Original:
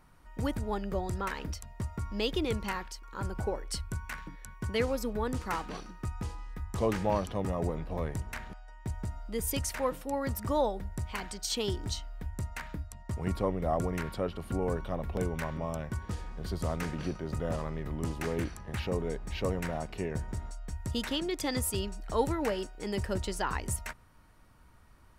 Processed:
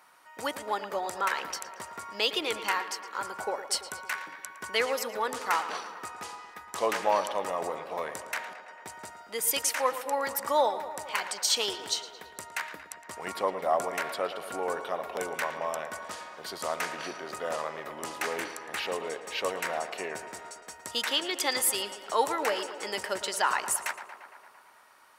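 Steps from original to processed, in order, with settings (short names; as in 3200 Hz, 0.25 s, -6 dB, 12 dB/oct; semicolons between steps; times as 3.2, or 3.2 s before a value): HPF 710 Hz 12 dB/oct; on a send: tape echo 0.113 s, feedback 77%, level -11.5 dB, low-pass 3600 Hz; on the sum: gain +8 dB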